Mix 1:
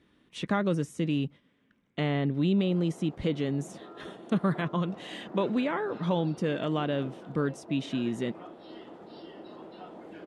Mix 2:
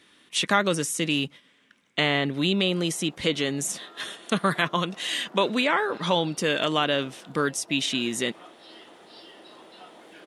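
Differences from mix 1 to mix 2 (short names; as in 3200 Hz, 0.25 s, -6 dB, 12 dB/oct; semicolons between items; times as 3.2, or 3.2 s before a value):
speech +8.5 dB; master: add tilt +4 dB/oct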